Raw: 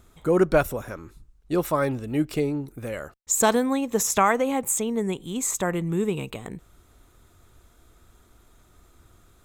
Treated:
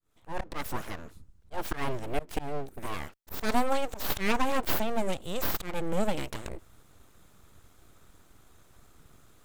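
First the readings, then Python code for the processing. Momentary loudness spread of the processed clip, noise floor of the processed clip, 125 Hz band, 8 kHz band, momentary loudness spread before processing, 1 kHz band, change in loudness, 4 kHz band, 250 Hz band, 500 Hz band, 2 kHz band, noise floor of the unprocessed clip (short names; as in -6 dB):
13 LU, -59 dBFS, -9.0 dB, -17.0 dB, 15 LU, -6.0 dB, -8.5 dB, -1.5 dB, -9.5 dB, -9.5 dB, -5.0 dB, -58 dBFS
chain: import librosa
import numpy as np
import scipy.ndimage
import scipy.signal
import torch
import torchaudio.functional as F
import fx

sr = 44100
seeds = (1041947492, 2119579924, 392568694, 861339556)

y = fx.fade_in_head(x, sr, length_s=0.65)
y = np.abs(y)
y = fx.auto_swell(y, sr, attack_ms=181.0)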